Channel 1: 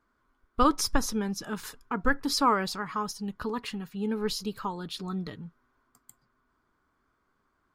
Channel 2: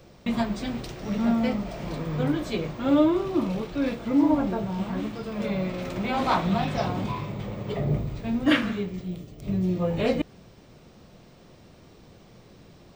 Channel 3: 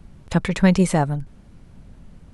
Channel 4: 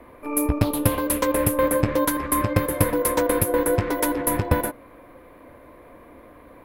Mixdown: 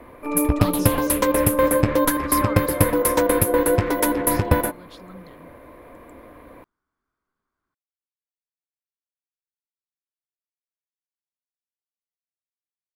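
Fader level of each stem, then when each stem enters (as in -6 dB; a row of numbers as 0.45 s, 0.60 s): -9.5 dB, mute, -17.5 dB, +2.5 dB; 0.00 s, mute, 0.00 s, 0.00 s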